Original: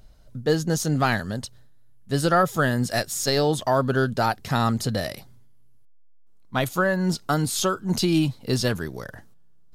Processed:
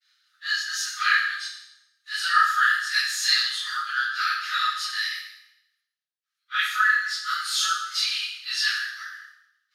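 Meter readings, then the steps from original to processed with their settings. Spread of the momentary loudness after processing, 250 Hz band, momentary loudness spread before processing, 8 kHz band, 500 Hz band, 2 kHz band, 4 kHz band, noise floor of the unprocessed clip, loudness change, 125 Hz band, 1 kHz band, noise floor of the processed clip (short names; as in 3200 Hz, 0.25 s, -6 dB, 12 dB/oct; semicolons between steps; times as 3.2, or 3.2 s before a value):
13 LU, under -40 dB, 12 LU, -0.5 dB, under -40 dB, +7.5 dB, +7.0 dB, -48 dBFS, +0.5 dB, under -40 dB, 0.0 dB, -84 dBFS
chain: phase scrambler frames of 0.1 s; bell 2400 Hz +14.5 dB 2.9 oct; expander -48 dBFS; rippled Chebyshev high-pass 1200 Hz, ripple 6 dB; bell 7800 Hz -4.5 dB 0.23 oct; Schroeder reverb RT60 0.82 s, combs from 28 ms, DRR 3 dB; gain -5 dB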